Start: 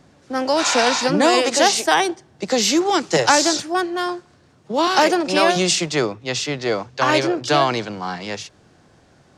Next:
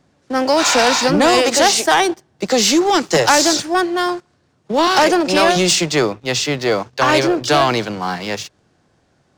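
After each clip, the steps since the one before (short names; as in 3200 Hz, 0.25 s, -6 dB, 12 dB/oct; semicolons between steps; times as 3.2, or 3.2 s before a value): sample leveller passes 2; gain -2.5 dB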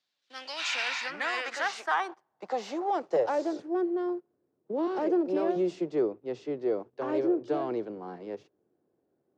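band-pass sweep 3800 Hz -> 380 Hz, 0.14–3.75; gain -8 dB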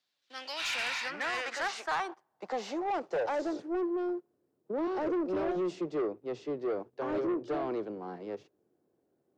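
soft clip -27 dBFS, distortion -12 dB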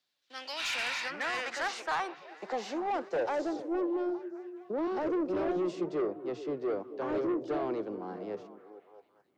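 delay with a stepping band-pass 0.215 s, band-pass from 230 Hz, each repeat 0.7 oct, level -8.5 dB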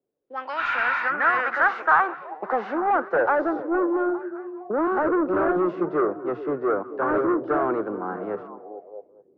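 envelope low-pass 430–1400 Hz up, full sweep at -38 dBFS; gain +7.5 dB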